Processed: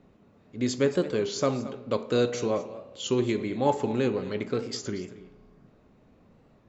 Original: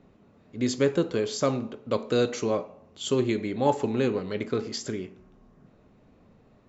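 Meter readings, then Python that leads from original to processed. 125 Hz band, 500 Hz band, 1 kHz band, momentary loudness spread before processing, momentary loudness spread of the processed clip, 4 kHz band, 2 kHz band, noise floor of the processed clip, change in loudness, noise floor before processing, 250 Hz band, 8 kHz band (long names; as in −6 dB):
−0.5 dB, −0.5 dB, −0.5 dB, 10 LU, 10 LU, −0.5 dB, −1.0 dB, −60 dBFS, −0.5 dB, −59 dBFS, −1.0 dB, can't be measured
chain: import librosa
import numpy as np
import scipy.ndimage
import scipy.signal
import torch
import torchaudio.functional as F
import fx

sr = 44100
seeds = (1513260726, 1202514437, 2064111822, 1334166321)

p1 = x + fx.echo_single(x, sr, ms=224, db=-16.0, dry=0)
p2 = fx.rev_spring(p1, sr, rt60_s=2.1, pass_ms=(33,), chirp_ms=60, drr_db=18.0)
p3 = fx.record_warp(p2, sr, rpm=33.33, depth_cents=100.0)
y = p3 * librosa.db_to_amplitude(-1.0)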